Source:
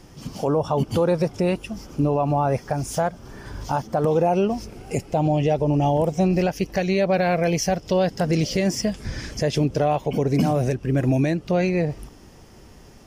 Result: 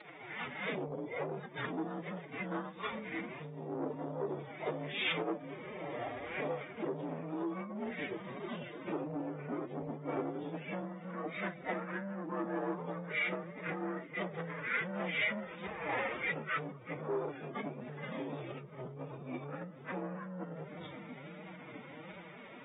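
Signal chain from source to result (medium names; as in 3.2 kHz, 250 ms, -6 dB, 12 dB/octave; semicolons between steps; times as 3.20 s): frequency axis rescaled in octaves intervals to 87%; on a send: feedback echo behind a low-pass 368 ms, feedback 66%, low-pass 1.2 kHz, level -20 dB; on the sum: speed mistake 78 rpm record played at 45 rpm; compression 5:1, threshold -31 dBFS, peak gain reduction 14 dB; flange 1.4 Hz, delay 7.6 ms, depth 8 ms, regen +33%; formant-preserving pitch shift +9 st; Bessel low-pass 2.9 kHz, order 8; saturation -34 dBFS, distortion -15 dB; high-pass 470 Hz 12 dB/octave; trim +11 dB; AAC 16 kbps 32 kHz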